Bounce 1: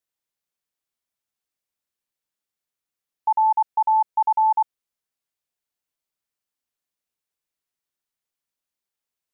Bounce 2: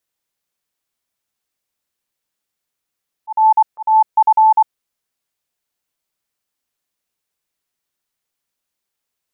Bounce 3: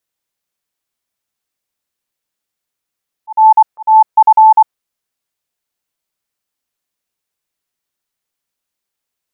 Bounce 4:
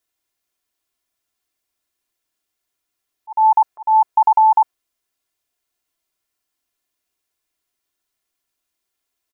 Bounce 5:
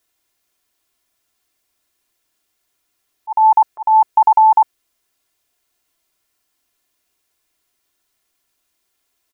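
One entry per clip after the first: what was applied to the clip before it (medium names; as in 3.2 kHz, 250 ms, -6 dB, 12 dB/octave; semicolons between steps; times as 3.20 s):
slow attack 194 ms; trim +7.5 dB
dynamic bell 960 Hz, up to +5 dB, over -21 dBFS, Q 0.75
comb 2.9 ms, depth 51%
dynamic bell 910 Hz, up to -6 dB, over -26 dBFS, Q 1; trim +8 dB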